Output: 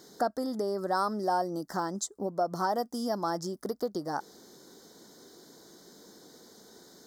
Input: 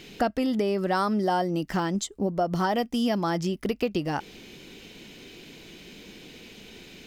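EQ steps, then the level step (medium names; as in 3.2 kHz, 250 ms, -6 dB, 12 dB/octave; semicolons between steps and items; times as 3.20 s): high-pass 610 Hz 6 dB/octave; Butterworth band-stop 2.6 kHz, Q 0.77; 0.0 dB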